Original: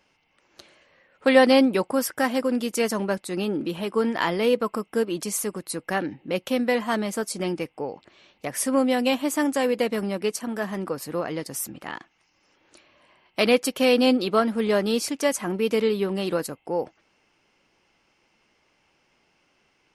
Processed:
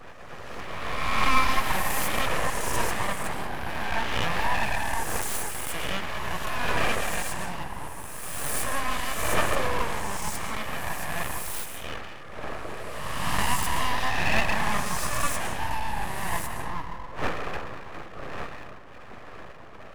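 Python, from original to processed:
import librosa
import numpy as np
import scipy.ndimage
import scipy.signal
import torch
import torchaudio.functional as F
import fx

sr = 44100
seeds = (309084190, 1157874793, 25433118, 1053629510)

y = fx.spec_swells(x, sr, rise_s=1.91)
y = fx.dmg_wind(y, sr, seeds[0], corner_hz=590.0, level_db=-30.0)
y = fx.peak_eq(y, sr, hz=1200.0, db=14.0, octaves=0.23)
y = fx.fixed_phaser(y, sr, hz=920.0, stages=6)
y = fx.rev_freeverb(y, sr, rt60_s=1.8, hf_ratio=0.55, predelay_ms=90, drr_db=5.0)
y = np.abs(y)
y = y * 10.0 ** (-4.0 / 20.0)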